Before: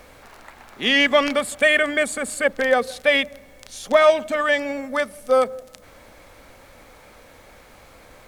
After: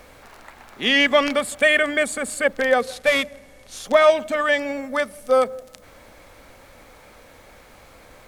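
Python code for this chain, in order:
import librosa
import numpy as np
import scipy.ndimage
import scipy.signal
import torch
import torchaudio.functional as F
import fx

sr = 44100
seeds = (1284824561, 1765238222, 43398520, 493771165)

y = fx.cvsd(x, sr, bps=64000, at=(2.8, 3.83))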